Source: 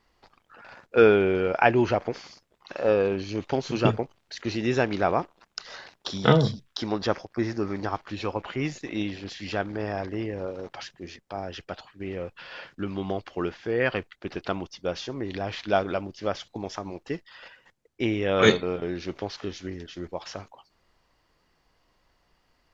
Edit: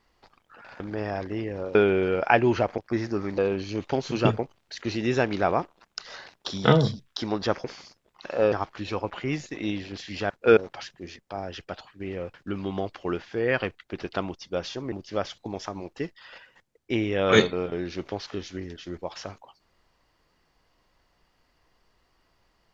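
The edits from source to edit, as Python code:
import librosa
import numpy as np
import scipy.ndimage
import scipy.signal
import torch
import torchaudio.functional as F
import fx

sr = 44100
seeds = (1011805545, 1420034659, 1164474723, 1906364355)

y = fx.edit(x, sr, fx.swap(start_s=0.8, length_s=0.27, other_s=9.62, other_length_s=0.95),
    fx.swap(start_s=2.1, length_s=0.88, other_s=7.24, other_length_s=0.6),
    fx.cut(start_s=12.34, length_s=0.32),
    fx.cut(start_s=15.24, length_s=0.78), tone=tone)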